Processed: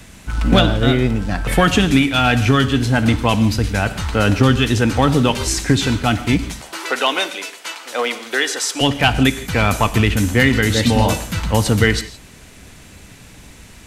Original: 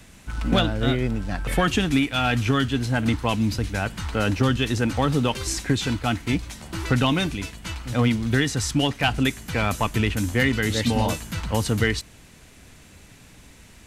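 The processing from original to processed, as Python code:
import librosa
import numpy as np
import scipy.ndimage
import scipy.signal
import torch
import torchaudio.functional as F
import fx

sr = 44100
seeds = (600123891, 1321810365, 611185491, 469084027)

y = fx.highpass(x, sr, hz=420.0, slope=24, at=(6.61, 8.81))
y = fx.rev_gated(y, sr, seeds[0], gate_ms=190, shape='flat', drr_db=12.0)
y = y * librosa.db_to_amplitude(7.0)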